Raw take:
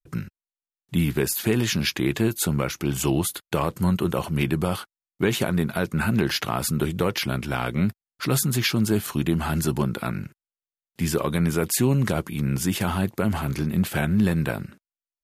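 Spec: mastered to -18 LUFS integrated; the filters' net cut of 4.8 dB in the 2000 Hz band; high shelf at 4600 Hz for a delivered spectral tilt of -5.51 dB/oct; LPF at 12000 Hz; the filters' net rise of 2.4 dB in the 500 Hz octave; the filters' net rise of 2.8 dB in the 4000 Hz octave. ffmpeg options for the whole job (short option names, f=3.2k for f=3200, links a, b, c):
-af "lowpass=12k,equalizer=f=500:t=o:g=3.5,equalizer=f=2k:t=o:g=-8.5,equalizer=f=4k:t=o:g=8.5,highshelf=f=4.6k:g=-4.5,volume=6dB"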